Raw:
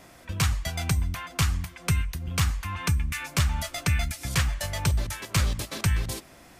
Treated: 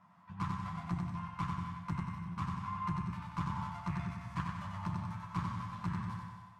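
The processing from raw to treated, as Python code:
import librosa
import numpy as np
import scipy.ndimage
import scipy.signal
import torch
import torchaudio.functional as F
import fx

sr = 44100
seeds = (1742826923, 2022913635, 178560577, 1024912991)

p1 = fx.lower_of_two(x, sr, delay_ms=9.9)
p2 = fx.double_bandpass(p1, sr, hz=420.0, octaves=2.6)
p3 = p2 + fx.echo_feedback(p2, sr, ms=93, feedback_pct=53, wet_db=-4.0, dry=0)
p4 = fx.rev_gated(p3, sr, seeds[0], gate_ms=310, shape='flat', drr_db=5.0)
p5 = fx.cheby_harmonics(p4, sr, harmonics=(2,), levels_db=(-10,), full_scale_db=-21.5)
y = p5 * 10.0 ** (1.0 / 20.0)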